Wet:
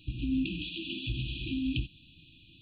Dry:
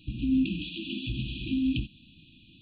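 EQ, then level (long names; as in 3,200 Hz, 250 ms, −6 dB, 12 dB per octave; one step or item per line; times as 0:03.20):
parametric band 220 Hz −11 dB 0.49 octaves
0.0 dB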